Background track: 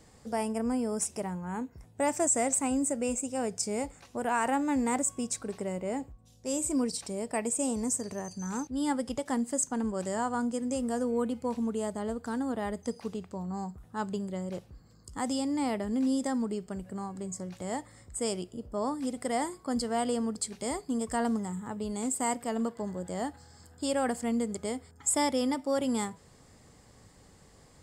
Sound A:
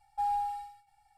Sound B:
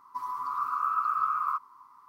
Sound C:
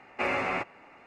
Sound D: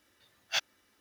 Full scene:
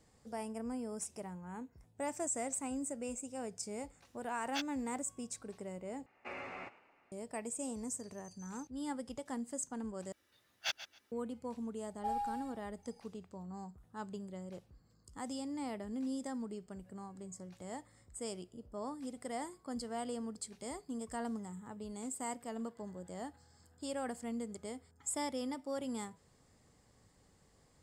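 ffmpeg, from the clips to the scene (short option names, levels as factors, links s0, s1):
-filter_complex "[4:a]asplit=2[s0][s1];[0:a]volume=0.299[s2];[s0]alimiter=limit=0.119:level=0:latency=1:release=71[s3];[3:a]asplit=5[s4][s5][s6][s7][s8];[s5]adelay=107,afreqshift=66,volume=0.126[s9];[s6]adelay=214,afreqshift=132,volume=0.0582[s10];[s7]adelay=321,afreqshift=198,volume=0.0266[s11];[s8]adelay=428,afreqshift=264,volume=0.0123[s12];[s4][s9][s10][s11][s12]amix=inputs=5:normalize=0[s13];[s1]aecho=1:1:137|274:0.211|0.0402[s14];[1:a]asplit=2[s15][s16];[s16]adelay=25,volume=0.211[s17];[s15][s17]amix=inputs=2:normalize=0[s18];[s2]asplit=3[s19][s20][s21];[s19]atrim=end=6.064[s22];[s13]atrim=end=1.06,asetpts=PTS-STARTPTS,volume=0.15[s23];[s20]atrim=start=7.116:end=10.124[s24];[s14]atrim=end=1,asetpts=PTS-STARTPTS,volume=0.501[s25];[s21]atrim=start=11.116[s26];[s3]atrim=end=1,asetpts=PTS-STARTPTS,volume=0.376,afade=t=in:d=0.004:c=hsin,afade=t=out:st=0.996:d=0.004:c=hsin,adelay=4020[s27];[s18]atrim=end=1.17,asetpts=PTS-STARTPTS,volume=0.562,afade=t=in:d=0.004:c=hsin,afade=t=out:st=1.166:d=0.004:c=hsin,adelay=523026S[s28];[s22][s23]acrossfade=d=0.004:c1=hsin:c2=hsin[s29];[s29][s24]acrossfade=d=0.004:c1=hsin:c2=hsin[s30];[s30][s25]acrossfade=d=0.004:c1=hsin:c2=hsin[s31];[s31][s26]acrossfade=d=0.004:c1=hsin:c2=hsin[s32];[s32][s27][s28]amix=inputs=3:normalize=0"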